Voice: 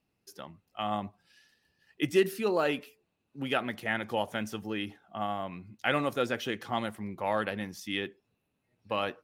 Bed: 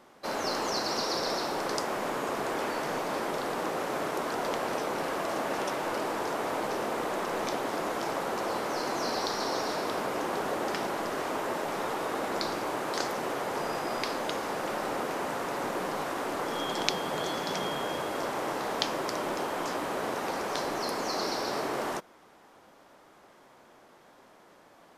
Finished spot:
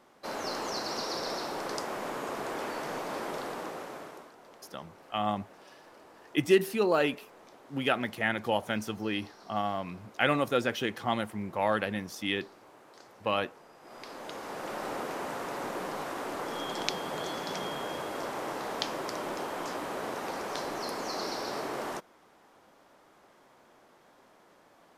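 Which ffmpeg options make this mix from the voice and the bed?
-filter_complex "[0:a]adelay=4350,volume=1.26[s0];[1:a]volume=5.96,afade=t=out:st=3.37:d=0.96:silence=0.112202,afade=t=in:st=13.79:d=1.08:silence=0.105925[s1];[s0][s1]amix=inputs=2:normalize=0"

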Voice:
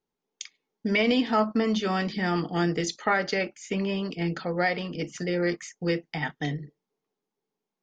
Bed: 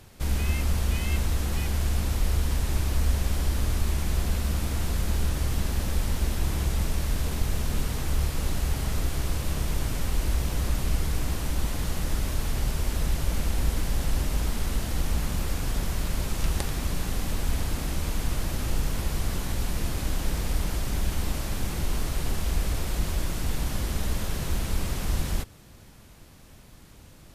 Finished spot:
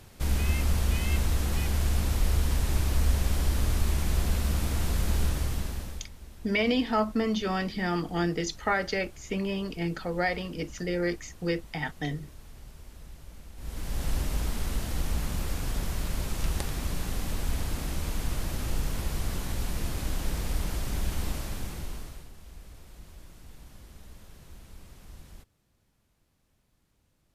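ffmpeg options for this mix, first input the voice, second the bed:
-filter_complex "[0:a]adelay=5600,volume=0.75[s0];[1:a]volume=7.08,afade=t=out:st=5.24:d=0.85:silence=0.1,afade=t=in:st=13.56:d=0.53:silence=0.133352,afade=t=out:st=21.27:d=1.02:silence=0.125893[s1];[s0][s1]amix=inputs=2:normalize=0"

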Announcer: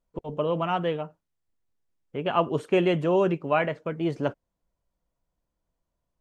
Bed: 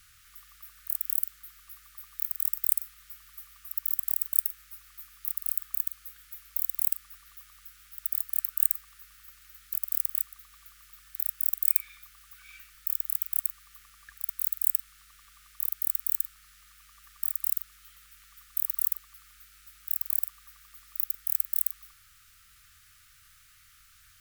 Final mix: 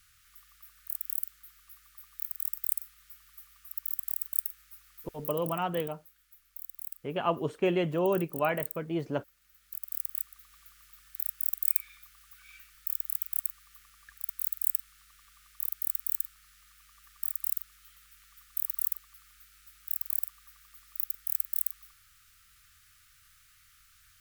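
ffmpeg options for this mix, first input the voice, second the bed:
-filter_complex "[0:a]adelay=4900,volume=0.562[s0];[1:a]volume=2,afade=t=out:st=5.14:d=0.4:silence=0.354813,afade=t=in:st=9.36:d=1.16:silence=0.281838[s1];[s0][s1]amix=inputs=2:normalize=0"

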